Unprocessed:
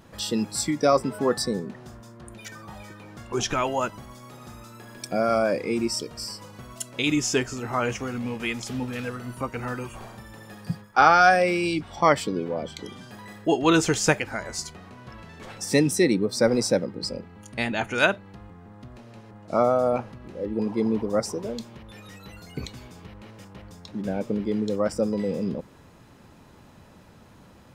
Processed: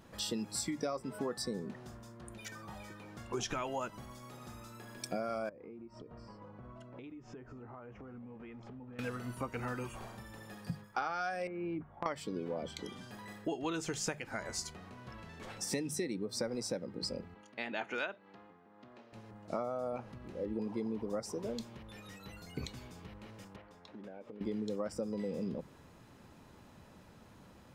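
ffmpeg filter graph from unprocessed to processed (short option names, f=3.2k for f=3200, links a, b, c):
-filter_complex "[0:a]asettb=1/sr,asplit=3[a][b][c];[a]atrim=end=5.494[d];[b]atrim=start=5.49:end=8.99,asetpts=PTS-STARTPTS,afade=t=in:d=0.004:c=qsin,afade=t=out:st=3.496:d=0.004:c=qsin,lowpass=1.2k,acompressor=threshold=-39dB:ratio=20:attack=3.2:release=140:knee=1:detection=peak[e];[c]atrim=start=8.986[f];[d][e]acrossfade=d=0.004:c1=hsin:c2=qsin[g];[g][f]acrossfade=d=0.004:c1=qsin:c2=hsin,asettb=1/sr,asplit=3[h][i][j];[h]atrim=end=11.474[k];[i]atrim=start=11.47:end=12.06,asetpts=PTS-STARTPTS,afade=t=in:d=0.004:c=qsin,afade=t=out:st=0.586:d=0.004:c=qsin,lowpass=f=1.7k:w=0.5412,lowpass=f=1.7k:w=1.3066,agate=range=-9dB:threshold=-33dB:ratio=16:release=100:detection=peak,acompressor=threshold=-27dB:ratio=6:attack=3.2:release=140:knee=1:detection=peak[l];[j]atrim=start=12.056[m];[k][l]acrossfade=d=0.004:c1=hsin:c2=qsin[n];[n][m]acrossfade=d=0.004:c1=qsin:c2=hsin,asettb=1/sr,asplit=3[o][p][q];[o]atrim=end=17.344[r];[p]atrim=start=17.34:end=19.13,asetpts=PTS-STARTPTS,afade=t=in:d=0.004:c=qsin,afade=t=out:st=1.786:d=0.004:c=qsin,highpass=290,lowpass=4.1k,tremolo=f=1.9:d=0.43[s];[q]atrim=start=19.126[t];[r][s]acrossfade=d=0.004:c1=hsin:c2=qsin[u];[u][t]acrossfade=d=0.004:c1=qsin:c2=hsin,asettb=1/sr,asplit=3[v][w][x];[v]atrim=end=23.564[y];[w]atrim=start=23.56:end=24.41,asetpts=PTS-STARTPTS,afade=t=in:d=0.004:c=qsin,afade=t=out:st=0.846:d=0.004:c=qsin,bass=f=250:g=-13,treble=f=4k:g=-14,acompressor=threshold=-38dB:ratio=12:attack=3.2:release=140:knee=1:detection=peak[z];[x]atrim=start=24.406[aa];[y][z]acrossfade=d=0.004:c1=hsin:c2=qsin[ab];[ab][aa]acrossfade=d=0.004:c1=qsin:c2=hsin,bandreject=f=50:t=h:w=6,bandreject=f=100:t=h:w=6,bandreject=f=150:t=h:w=6,acompressor=threshold=-27dB:ratio=12,volume=-6dB"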